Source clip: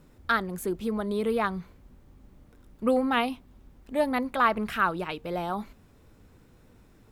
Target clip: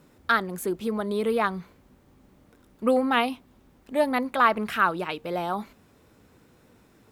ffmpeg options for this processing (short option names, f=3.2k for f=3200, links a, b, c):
-af "highpass=f=190:p=1,volume=3dB"